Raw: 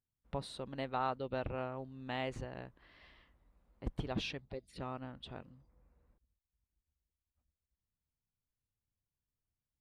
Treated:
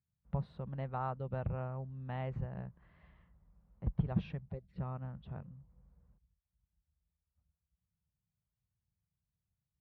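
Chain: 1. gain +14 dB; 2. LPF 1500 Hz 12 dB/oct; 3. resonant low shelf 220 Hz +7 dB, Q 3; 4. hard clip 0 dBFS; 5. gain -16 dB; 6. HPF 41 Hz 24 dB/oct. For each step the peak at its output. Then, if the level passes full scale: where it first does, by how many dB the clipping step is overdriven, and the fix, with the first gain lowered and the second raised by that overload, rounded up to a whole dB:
-8.5, -9.5, -2.5, -2.5, -18.5, -20.0 dBFS; no overload

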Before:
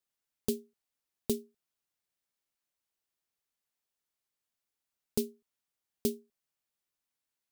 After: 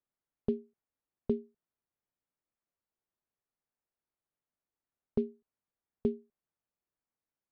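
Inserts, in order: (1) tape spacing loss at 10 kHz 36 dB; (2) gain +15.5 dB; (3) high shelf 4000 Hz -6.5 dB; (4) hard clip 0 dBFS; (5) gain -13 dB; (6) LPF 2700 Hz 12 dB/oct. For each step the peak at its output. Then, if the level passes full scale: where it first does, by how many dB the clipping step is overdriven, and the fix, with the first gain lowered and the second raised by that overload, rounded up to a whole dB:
-19.5, -4.0, -4.0, -4.0, -17.0, -17.0 dBFS; no overload

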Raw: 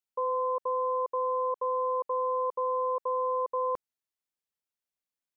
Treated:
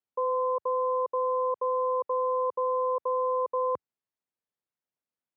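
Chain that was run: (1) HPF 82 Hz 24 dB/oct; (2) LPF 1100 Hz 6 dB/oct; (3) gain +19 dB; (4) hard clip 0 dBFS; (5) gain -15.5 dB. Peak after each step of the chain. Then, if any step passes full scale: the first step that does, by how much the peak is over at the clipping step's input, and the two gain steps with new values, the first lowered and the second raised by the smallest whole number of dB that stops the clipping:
-23.0, -24.5, -5.5, -5.5, -21.0 dBFS; no overload

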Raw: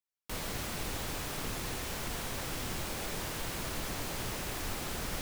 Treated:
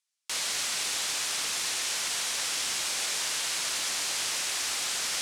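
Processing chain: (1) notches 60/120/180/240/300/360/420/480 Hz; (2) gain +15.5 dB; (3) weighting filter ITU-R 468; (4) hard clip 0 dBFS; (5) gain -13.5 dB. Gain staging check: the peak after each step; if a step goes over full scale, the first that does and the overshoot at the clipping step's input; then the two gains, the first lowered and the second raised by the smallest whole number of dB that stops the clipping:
-24.0, -8.5, -4.0, -4.0, -17.5 dBFS; no overload

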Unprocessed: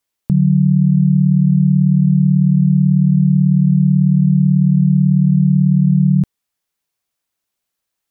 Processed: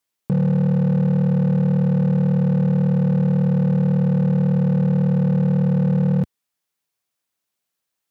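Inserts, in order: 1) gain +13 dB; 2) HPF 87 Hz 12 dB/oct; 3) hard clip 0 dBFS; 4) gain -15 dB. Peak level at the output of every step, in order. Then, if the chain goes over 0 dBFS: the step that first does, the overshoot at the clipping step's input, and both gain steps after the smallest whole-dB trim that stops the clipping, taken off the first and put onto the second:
+7.5, +7.0, 0.0, -15.0 dBFS; step 1, 7.0 dB; step 1 +6 dB, step 4 -8 dB

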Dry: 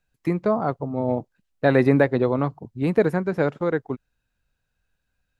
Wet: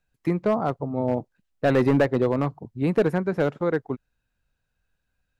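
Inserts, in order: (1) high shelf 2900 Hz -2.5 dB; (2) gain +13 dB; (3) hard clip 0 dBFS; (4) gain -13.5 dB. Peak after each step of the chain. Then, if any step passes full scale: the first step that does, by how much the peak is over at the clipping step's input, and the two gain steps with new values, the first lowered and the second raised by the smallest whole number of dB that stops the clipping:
-4.5, +8.5, 0.0, -13.5 dBFS; step 2, 8.5 dB; step 2 +4 dB, step 4 -4.5 dB

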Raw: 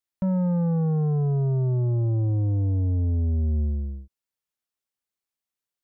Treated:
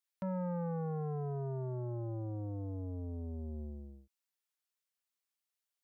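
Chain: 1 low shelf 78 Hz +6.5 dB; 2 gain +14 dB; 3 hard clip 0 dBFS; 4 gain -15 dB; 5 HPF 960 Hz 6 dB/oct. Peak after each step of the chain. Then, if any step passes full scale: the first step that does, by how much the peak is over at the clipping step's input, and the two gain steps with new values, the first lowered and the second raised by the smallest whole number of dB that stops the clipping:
-16.5, -2.5, -2.5, -17.5, -28.0 dBFS; no overload

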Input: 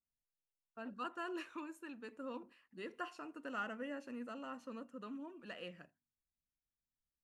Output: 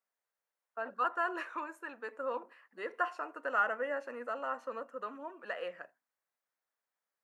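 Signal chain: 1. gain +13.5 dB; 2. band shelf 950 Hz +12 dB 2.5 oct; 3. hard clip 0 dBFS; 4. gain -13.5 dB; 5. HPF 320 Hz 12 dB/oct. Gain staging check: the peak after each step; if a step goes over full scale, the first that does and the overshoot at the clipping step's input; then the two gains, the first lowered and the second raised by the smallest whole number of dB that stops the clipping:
-16.5, -4.5, -4.5, -18.0, -18.5 dBFS; no overload

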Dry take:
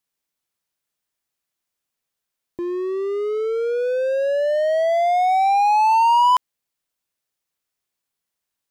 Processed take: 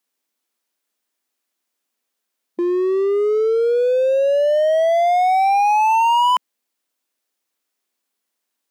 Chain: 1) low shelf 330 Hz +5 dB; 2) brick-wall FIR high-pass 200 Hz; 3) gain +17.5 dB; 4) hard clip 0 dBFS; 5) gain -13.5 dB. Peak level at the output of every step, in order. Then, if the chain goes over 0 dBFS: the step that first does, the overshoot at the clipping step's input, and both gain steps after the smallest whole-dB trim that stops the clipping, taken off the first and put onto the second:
-9.0, -9.0, +8.5, 0.0, -13.5 dBFS; step 3, 8.5 dB; step 3 +8.5 dB, step 5 -4.5 dB

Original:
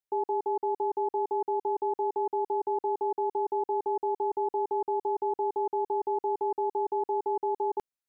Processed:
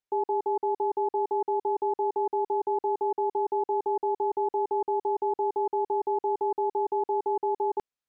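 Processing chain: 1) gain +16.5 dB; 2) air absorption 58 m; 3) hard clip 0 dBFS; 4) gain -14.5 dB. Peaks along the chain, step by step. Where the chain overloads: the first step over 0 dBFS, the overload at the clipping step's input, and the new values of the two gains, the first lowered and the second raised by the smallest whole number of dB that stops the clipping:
-5.5, -5.5, -5.5, -20.0 dBFS; no overload

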